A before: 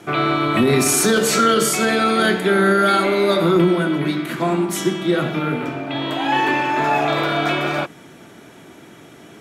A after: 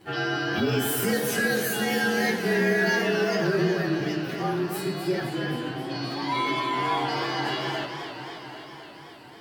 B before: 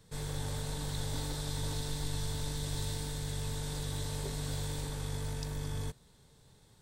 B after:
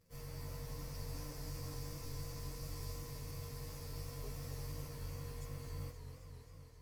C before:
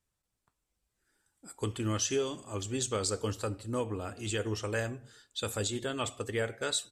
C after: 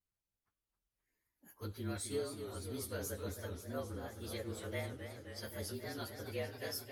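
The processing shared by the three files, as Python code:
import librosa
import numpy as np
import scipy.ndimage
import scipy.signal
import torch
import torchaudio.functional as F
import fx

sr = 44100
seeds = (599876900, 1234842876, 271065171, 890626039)

y = fx.partial_stretch(x, sr, pct=111)
y = fx.echo_warbled(y, sr, ms=264, feedback_pct=74, rate_hz=2.8, cents=147, wet_db=-9)
y = y * librosa.db_to_amplitude(-7.0)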